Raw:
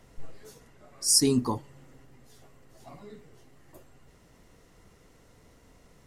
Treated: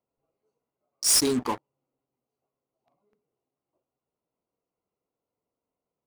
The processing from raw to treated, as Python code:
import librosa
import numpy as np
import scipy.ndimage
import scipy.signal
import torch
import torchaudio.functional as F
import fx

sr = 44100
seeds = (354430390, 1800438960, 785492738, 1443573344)

y = fx.wiener(x, sr, points=25)
y = fx.highpass(y, sr, hz=840.0, slope=6)
y = fx.leveller(y, sr, passes=5)
y = y * 10.0 ** (-8.5 / 20.0)